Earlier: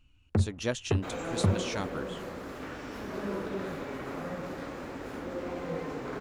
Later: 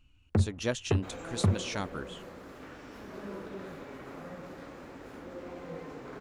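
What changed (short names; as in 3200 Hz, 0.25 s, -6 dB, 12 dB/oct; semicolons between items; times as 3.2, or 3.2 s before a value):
second sound -8.0 dB; reverb: on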